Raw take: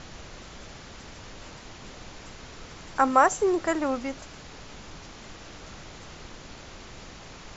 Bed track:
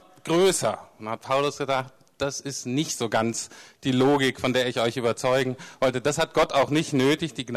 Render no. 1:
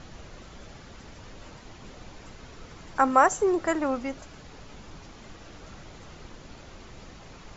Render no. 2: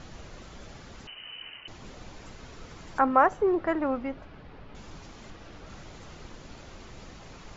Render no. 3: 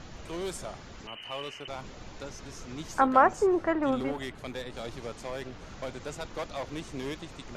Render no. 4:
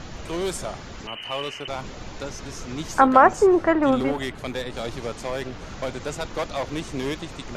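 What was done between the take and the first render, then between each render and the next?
broadband denoise 6 dB, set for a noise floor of −45 dBFS
0:01.07–0:01.68: voice inversion scrambler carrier 3,000 Hz; 0:02.99–0:04.75: high-frequency loss of the air 330 metres; 0:05.30–0:05.70: high-frequency loss of the air 79 metres
mix in bed track −15.5 dB
level +8 dB; brickwall limiter −2 dBFS, peak gain reduction 3 dB

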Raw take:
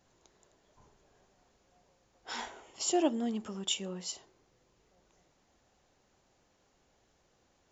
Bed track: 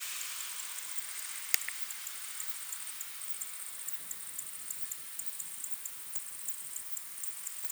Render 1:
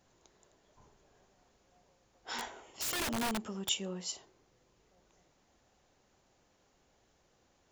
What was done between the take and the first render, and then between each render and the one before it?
0:02.37–0:03.69: wrap-around overflow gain 29.5 dB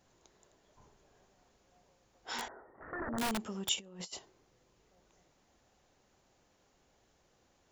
0:02.48–0:03.18: Chebyshev low-pass with heavy ripple 1,900 Hz, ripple 3 dB
0:03.76–0:04.19: compressor whose output falls as the input rises −46 dBFS, ratio −0.5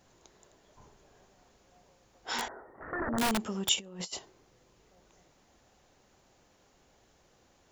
level +5.5 dB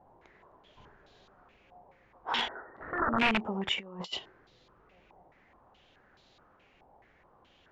low-pass on a step sequencer 4.7 Hz 850–3,900 Hz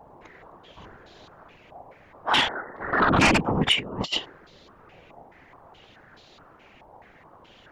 sine wavefolder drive 7 dB, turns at −13 dBFS
random phases in short frames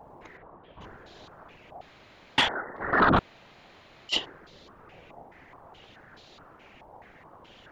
0:00.37–0:00.81: high-frequency loss of the air 490 metres
0:01.81–0:02.38: fill with room tone
0:03.19–0:04.09: fill with room tone

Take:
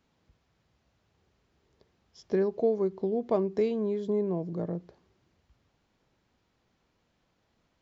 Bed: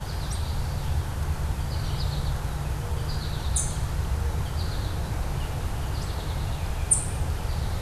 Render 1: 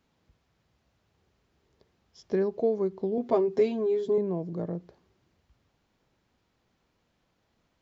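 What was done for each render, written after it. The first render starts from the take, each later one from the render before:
0:03.17–0:04.18: comb filter 7.5 ms, depth 95%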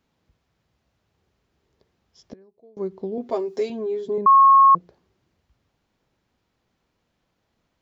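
0:02.33–0:02.77: gate with flip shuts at −35 dBFS, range −26 dB
0:03.30–0:03.70: bass and treble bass −10 dB, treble +11 dB
0:04.26–0:04.75: beep over 1,090 Hz −9 dBFS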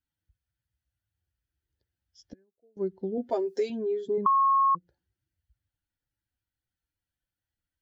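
spectral dynamics exaggerated over time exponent 1.5
downward compressor 4 to 1, threshold −23 dBFS, peak gain reduction 10 dB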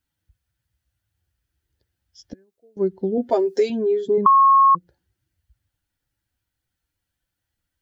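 level +9 dB

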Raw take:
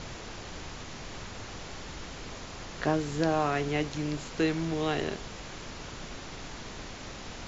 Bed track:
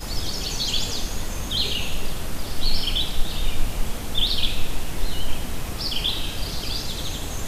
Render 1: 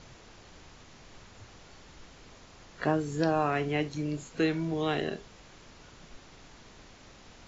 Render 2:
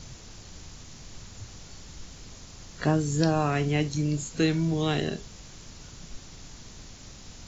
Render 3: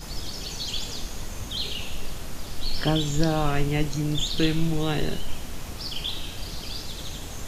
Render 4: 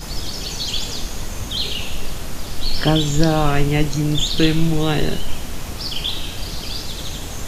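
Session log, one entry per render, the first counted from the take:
noise reduction from a noise print 11 dB
bass and treble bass +10 dB, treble +14 dB
mix in bed track −6.5 dB
level +7 dB

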